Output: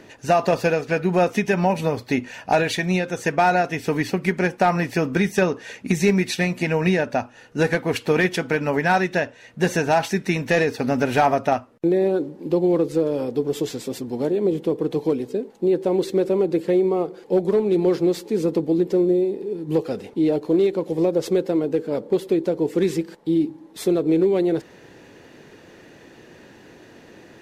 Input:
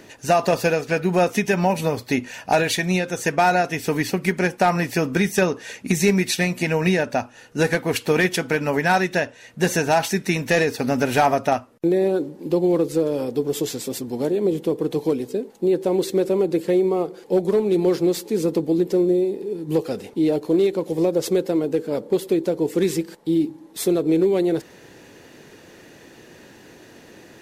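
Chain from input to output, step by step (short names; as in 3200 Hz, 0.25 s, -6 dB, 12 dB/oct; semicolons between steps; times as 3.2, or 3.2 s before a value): high shelf 6000 Hz -10.5 dB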